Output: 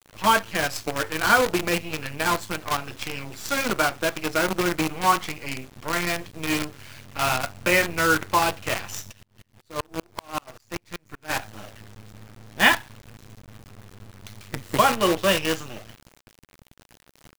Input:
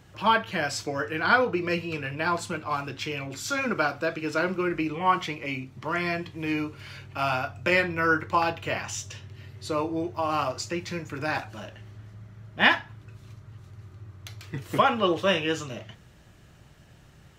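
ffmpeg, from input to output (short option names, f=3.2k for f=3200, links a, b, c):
-filter_complex "[0:a]acrusher=bits=5:dc=4:mix=0:aa=0.000001,asplit=3[a][b][c];[a]afade=t=out:st=9.11:d=0.02[d];[b]aeval=exprs='val(0)*pow(10,-38*if(lt(mod(-5.2*n/s,1),2*abs(-5.2)/1000),1-mod(-5.2*n/s,1)/(2*abs(-5.2)/1000),(mod(-5.2*n/s,1)-2*abs(-5.2)/1000)/(1-2*abs(-5.2)/1000))/20)':c=same,afade=t=in:st=9.11:d=0.02,afade=t=out:st=11.29:d=0.02[e];[c]afade=t=in:st=11.29:d=0.02[f];[d][e][f]amix=inputs=3:normalize=0,volume=2.5dB"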